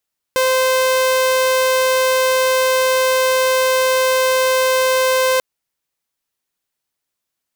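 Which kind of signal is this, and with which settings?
tone saw 518 Hz −10.5 dBFS 5.04 s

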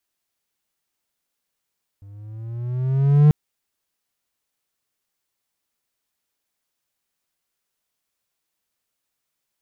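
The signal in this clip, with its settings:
pitch glide with a swell triangle, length 1.29 s, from 98.2 Hz, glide +7.5 semitones, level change +32 dB, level −6 dB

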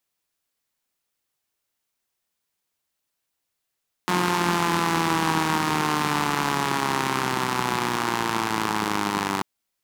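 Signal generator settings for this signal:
pulse-train model of a four-cylinder engine, changing speed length 5.34 s, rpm 5,400, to 2,900, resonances 200/320/910 Hz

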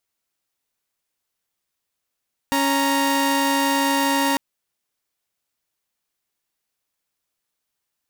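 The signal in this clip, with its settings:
held notes C#4/A#5 saw, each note −18 dBFS 1.85 s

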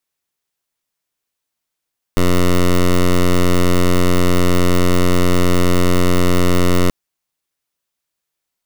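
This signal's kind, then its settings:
pulse wave 89.5 Hz, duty 11% −11.5 dBFS 4.73 s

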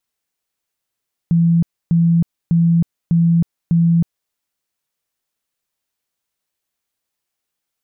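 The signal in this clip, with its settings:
tone bursts 168 Hz, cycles 53, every 0.60 s, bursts 5, −10 dBFS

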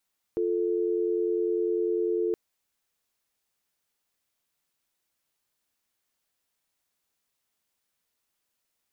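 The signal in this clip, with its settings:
call progress tone dial tone, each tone −26.5 dBFS 1.97 s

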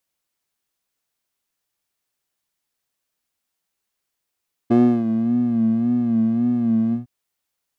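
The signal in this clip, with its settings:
subtractive patch with vibrato A#3, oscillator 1 square, interval 0 semitones, detune 27 cents, oscillator 2 level −9 dB, sub −3 dB, filter bandpass, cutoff 130 Hz, Q 2.8, filter envelope 1.5 octaves, filter decay 0.67 s, filter sustain 50%, attack 14 ms, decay 0.32 s, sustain −12 dB, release 0.13 s, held 2.23 s, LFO 1.8 Hz, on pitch 74 cents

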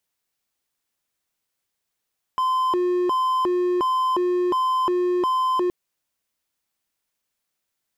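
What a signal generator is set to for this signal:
siren hi-lo 358–1,030 Hz 1.4 per second triangle −16.5 dBFS 3.32 s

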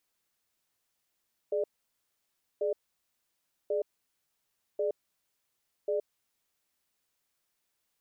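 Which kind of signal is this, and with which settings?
tone pair in a cadence 420 Hz, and 594 Hz, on 0.12 s, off 0.97 s, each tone −29.5 dBFS 5.33 s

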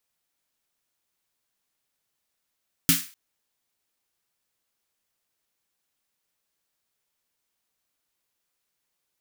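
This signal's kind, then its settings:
synth snare length 0.25 s, tones 170 Hz, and 270 Hz, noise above 1,500 Hz, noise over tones 3.5 dB, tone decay 0.21 s, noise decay 0.37 s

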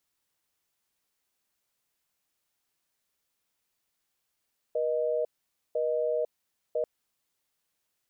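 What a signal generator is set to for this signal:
call progress tone busy tone, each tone −28 dBFS 2.09 s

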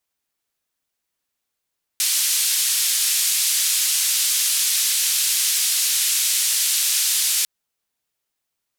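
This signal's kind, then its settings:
band-limited noise 3,200–12,000 Hz, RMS −20 dBFS 5.45 s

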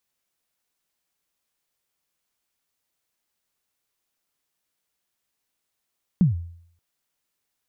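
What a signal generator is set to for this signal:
synth kick length 0.58 s, from 200 Hz, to 85 Hz, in 139 ms, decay 0.63 s, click off, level −11 dB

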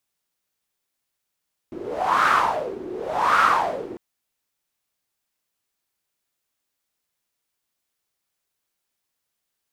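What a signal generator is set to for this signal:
wind from filtered noise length 2.25 s, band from 350 Hz, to 1,300 Hz, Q 6.1, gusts 2, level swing 17 dB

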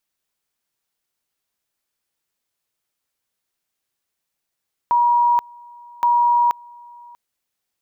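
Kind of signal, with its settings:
tone at two levels in turn 957 Hz −12.5 dBFS, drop 26.5 dB, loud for 0.48 s, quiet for 0.64 s, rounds 2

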